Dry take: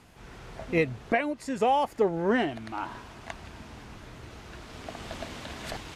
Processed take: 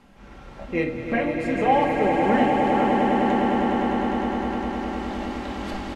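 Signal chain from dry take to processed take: high shelf 4500 Hz -10.5 dB; comb 3.7 ms, depth 39%; on a send: swelling echo 0.102 s, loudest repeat 8, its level -7.5 dB; on the sum: shoebox room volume 340 m³, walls furnished, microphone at 1.2 m

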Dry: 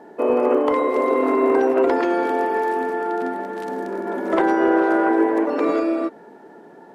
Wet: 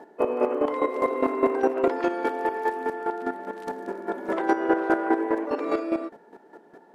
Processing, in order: HPF 200 Hz 6 dB/oct; chopper 4.9 Hz, depth 65%, duty 20%

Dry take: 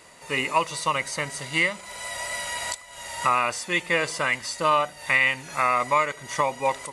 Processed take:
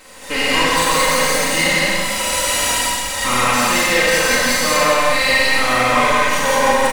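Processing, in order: minimum comb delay 3.8 ms; limiter -20.5 dBFS, peak gain reduction 10.5 dB; loudspeakers at several distances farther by 34 m -9 dB, 58 m -1 dB; Schroeder reverb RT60 1.7 s, combs from 33 ms, DRR -5 dB; gain +7.5 dB

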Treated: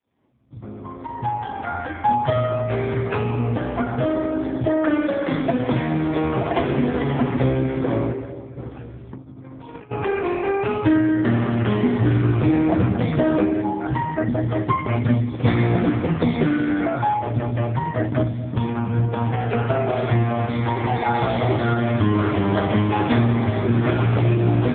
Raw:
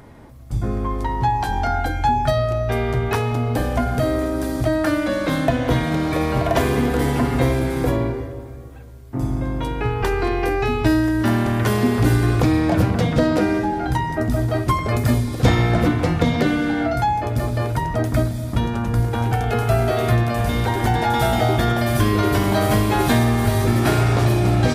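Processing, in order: opening faded in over 2.21 s; 8.56–9.91 negative-ratio compressor -30 dBFS, ratio -0.5; 13.42–13.84 dynamic EQ 1500 Hz, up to -6 dB, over -38 dBFS, Q 0.75; gain +1 dB; AMR-NB 5.15 kbps 8000 Hz

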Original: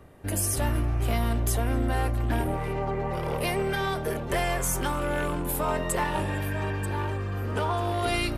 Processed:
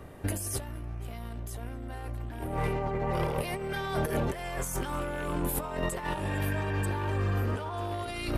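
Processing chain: negative-ratio compressor -31 dBFS, ratio -0.5

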